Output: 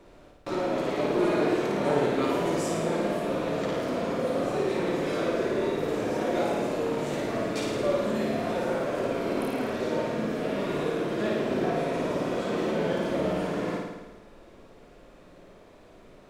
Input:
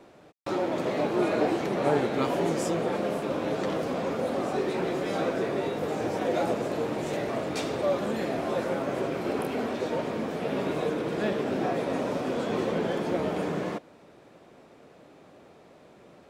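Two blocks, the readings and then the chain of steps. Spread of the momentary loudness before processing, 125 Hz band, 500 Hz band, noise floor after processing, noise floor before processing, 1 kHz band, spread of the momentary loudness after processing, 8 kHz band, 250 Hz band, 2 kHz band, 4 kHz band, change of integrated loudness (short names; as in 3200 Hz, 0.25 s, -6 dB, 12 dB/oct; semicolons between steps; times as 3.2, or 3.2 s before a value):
4 LU, +1.0 dB, +1.0 dB, -52 dBFS, -54 dBFS, -0.5 dB, 4 LU, +1.0 dB, +1.0 dB, +1.0 dB, +1.0 dB, +1.0 dB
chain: notch 790 Hz, Q 12; added noise brown -58 dBFS; on a send: flutter echo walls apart 9.4 m, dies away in 1.1 s; on the sum: gain -2 dB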